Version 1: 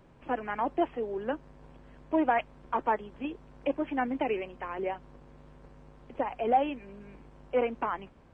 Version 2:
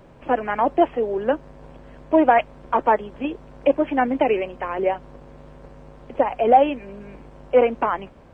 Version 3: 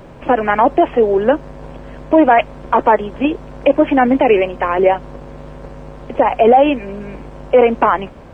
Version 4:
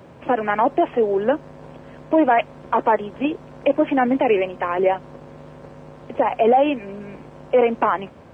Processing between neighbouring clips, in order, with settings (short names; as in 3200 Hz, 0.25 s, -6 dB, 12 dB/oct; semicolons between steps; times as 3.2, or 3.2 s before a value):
bell 580 Hz +5 dB 0.66 oct; gain +8.5 dB
maximiser +11.5 dB; gain -1 dB
HPF 75 Hz 24 dB/oct; gain -6 dB